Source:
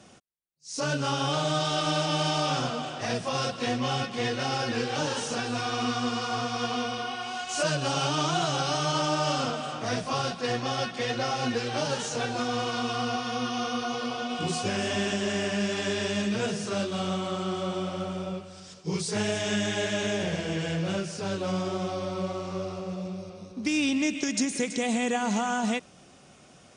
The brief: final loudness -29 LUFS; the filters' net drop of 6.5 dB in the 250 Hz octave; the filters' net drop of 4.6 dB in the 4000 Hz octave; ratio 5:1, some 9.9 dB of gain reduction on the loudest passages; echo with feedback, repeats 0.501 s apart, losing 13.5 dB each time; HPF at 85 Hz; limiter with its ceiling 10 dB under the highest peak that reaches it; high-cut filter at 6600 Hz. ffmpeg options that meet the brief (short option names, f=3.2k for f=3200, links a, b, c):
-af "highpass=85,lowpass=6.6k,equalizer=f=250:t=o:g=-8.5,equalizer=f=4k:t=o:g=-6,acompressor=threshold=-36dB:ratio=5,alimiter=level_in=9.5dB:limit=-24dB:level=0:latency=1,volume=-9.5dB,aecho=1:1:501|1002:0.211|0.0444,volume=13dB"